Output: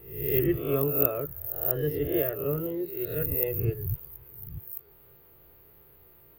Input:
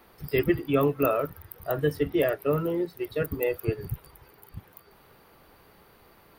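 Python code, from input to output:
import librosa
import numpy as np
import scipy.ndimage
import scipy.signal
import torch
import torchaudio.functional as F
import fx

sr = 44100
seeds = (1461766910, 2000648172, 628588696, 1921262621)

y = fx.spec_swells(x, sr, rise_s=0.67)
y = fx.curve_eq(y, sr, hz=(140.0, 210.0, 370.0, 920.0, 3100.0, 7900.0, 15000.0), db=(0, -12, -2, -12, -9, -21, 11))
y = F.gain(torch.from_numpy(y), -1.0).numpy()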